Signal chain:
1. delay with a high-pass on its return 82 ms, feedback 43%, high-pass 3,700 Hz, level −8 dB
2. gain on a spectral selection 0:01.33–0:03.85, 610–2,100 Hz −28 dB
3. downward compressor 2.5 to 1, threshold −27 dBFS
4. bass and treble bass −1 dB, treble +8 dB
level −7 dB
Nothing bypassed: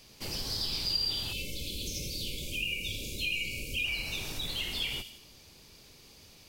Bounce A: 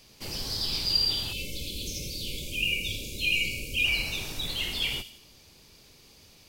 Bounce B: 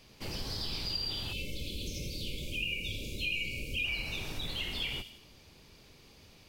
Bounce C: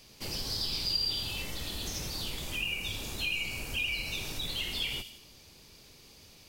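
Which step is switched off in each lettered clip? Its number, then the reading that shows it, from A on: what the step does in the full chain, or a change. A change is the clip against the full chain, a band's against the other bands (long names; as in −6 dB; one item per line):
3, change in crest factor +1.5 dB
4, 8 kHz band −7.0 dB
2, 1 kHz band +3.5 dB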